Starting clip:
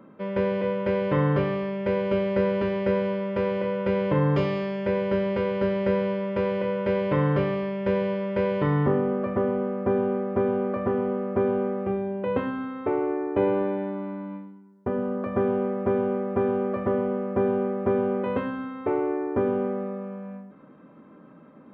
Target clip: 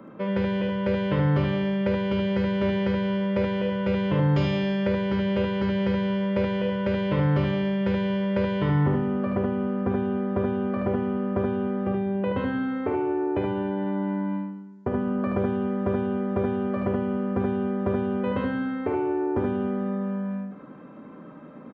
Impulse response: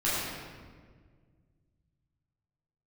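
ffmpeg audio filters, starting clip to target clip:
-filter_complex "[0:a]aresample=16000,aresample=44100,acrossover=split=140|3000[s0][s1][s2];[s1]acompressor=threshold=0.0316:ratio=6[s3];[s0][s3][s2]amix=inputs=3:normalize=0,aecho=1:1:52|76:0.335|0.631,volume=1.68"

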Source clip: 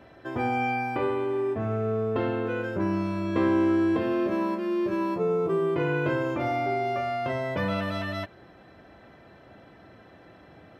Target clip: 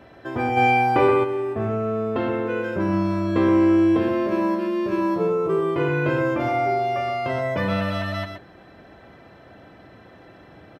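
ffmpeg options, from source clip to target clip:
-filter_complex "[0:a]aecho=1:1:124:0.447,asplit=3[s0][s1][s2];[s0]afade=t=out:st=0.56:d=0.02[s3];[s1]acontrast=51,afade=t=in:st=0.56:d=0.02,afade=t=out:st=1.23:d=0.02[s4];[s2]afade=t=in:st=1.23:d=0.02[s5];[s3][s4][s5]amix=inputs=3:normalize=0,volume=1.5"

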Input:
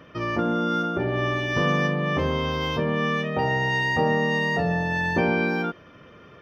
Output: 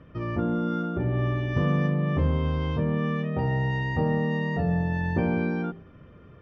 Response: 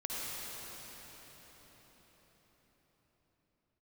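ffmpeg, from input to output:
-af "aemphasis=mode=reproduction:type=riaa,bandreject=f=56.27:t=h:w=4,bandreject=f=112.54:t=h:w=4,bandreject=f=168.81:t=h:w=4,bandreject=f=225.08:t=h:w=4,bandreject=f=281.35:t=h:w=4,bandreject=f=337.62:t=h:w=4,bandreject=f=393.89:t=h:w=4,bandreject=f=450.16:t=h:w=4,bandreject=f=506.43:t=h:w=4,bandreject=f=562.7:t=h:w=4,bandreject=f=618.97:t=h:w=4,bandreject=f=675.24:t=h:w=4,bandreject=f=731.51:t=h:w=4,bandreject=f=787.78:t=h:w=4,bandreject=f=844.05:t=h:w=4,bandreject=f=900.32:t=h:w=4,bandreject=f=956.59:t=h:w=4,bandreject=f=1012.86:t=h:w=4,bandreject=f=1069.13:t=h:w=4,volume=0.422"

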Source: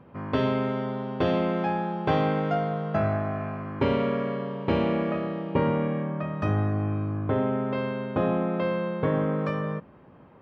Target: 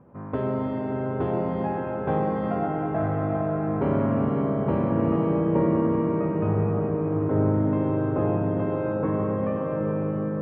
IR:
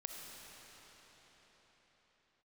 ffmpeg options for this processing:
-filter_complex "[0:a]lowpass=1200,bandreject=f=87.8:t=h:w=4,bandreject=f=175.6:t=h:w=4,bandreject=f=263.4:t=h:w=4,bandreject=f=351.2:t=h:w=4,bandreject=f=439:t=h:w=4,bandreject=f=526.8:t=h:w=4,bandreject=f=614.6:t=h:w=4,bandreject=f=702.4:t=h:w=4,bandreject=f=790.2:t=h:w=4,bandreject=f=878:t=h:w=4,bandreject=f=965.8:t=h:w=4,bandreject=f=1053.6:t=h:w=4,bandreject=f=1141.4:t=h:w=4,bandreject=f=1229.2:t=h:w=4,bandreject=f=1317:t=h:w=4,bandreject=f=1404.8:t=h:w=4,bandreject=f=1492.6:t=h:w=4[s0];[1:a]atrim=start_sample=2205,asetrate=23373,aresample=44100[s1];[s0][s1]afir=irnorm=-1:irlink=0"

